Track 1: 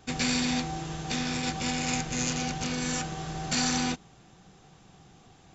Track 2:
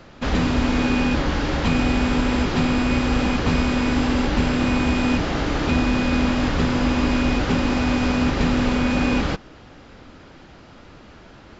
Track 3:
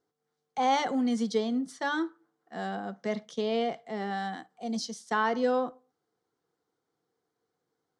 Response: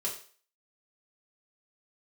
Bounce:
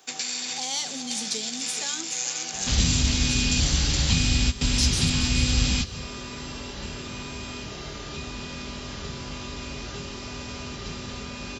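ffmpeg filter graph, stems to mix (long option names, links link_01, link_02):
-filter_complex "[0:a]highpass=400,acompressor=threshold=-32dB:ratio=6,volume=-0.5dB,asplit=2[link_01][link_02];[link_02]volume=-3.5dB[link_03];[1:a]adelay=2450,volume=2.5dB,asplit=2[link_04][link_05];[link_05]volume=-16.5dB[link_06];[2:a]highshelf=frequency=3000:gain=9.5,volume=-4dB,asplit=4[link_07][link_08][link_09][link_10];[link_08]volume=-11.5dB[link_11];[link_09]volume=-12.5dB[link_12];[link_10]apad=whole_len=619426[link_13];[link_04][link_13]sidechaingate=range=-33dB:threshold=-53dB:ratio=16:detection=peak[link_14];[3:a]atrim=start_sample=2205[link_15];[link_06][link_11]amix=inputs=2:normalize=0[link_16];[link_16][link_15]afir=irnorm=-1:irlink=0[link_17];[link_03][link_12]amix=inputs=2:normalize=0,aecho=0:1:421:1[link_18];[link_01][link_14][link_07][link_17][link_18]amix=inputs=5:normalize=0,highpass=46,highshelf=frequency=3700:gain=11.5,acrossover=split=160|3000[link_19][link_20][link_21];[link_20]acompressor=threshold=-38dB:ratio=5[link_22];[link_19][link_22][link_21]amix=inputs=3:normalize=0"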